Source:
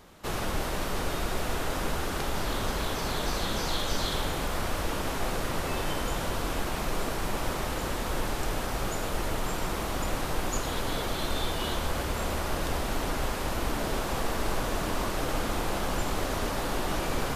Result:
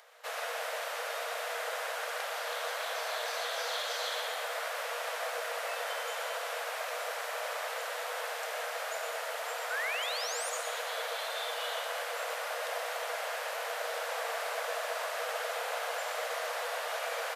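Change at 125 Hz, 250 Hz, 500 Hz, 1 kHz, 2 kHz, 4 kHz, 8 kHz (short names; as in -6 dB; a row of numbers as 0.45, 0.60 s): under -40 dB, under -40 dB, -3.0 dB, -3.0 dB, +0.5 dB, -2.5 dB, -4.0 dB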